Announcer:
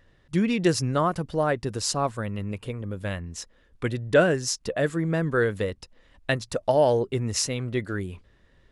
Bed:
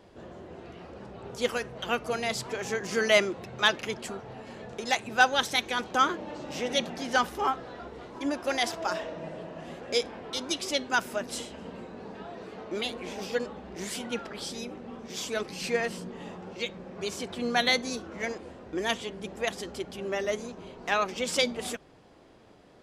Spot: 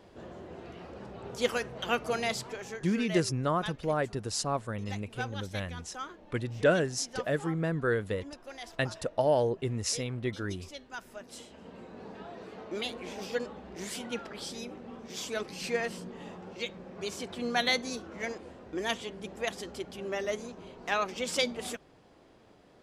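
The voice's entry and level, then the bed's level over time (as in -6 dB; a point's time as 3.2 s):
2.50 s, -5.5 dB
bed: 2.26 s -0.5 dB
3.08 s -16.5 dB
10.9 s -16.5 dB
12.02 s -3 dB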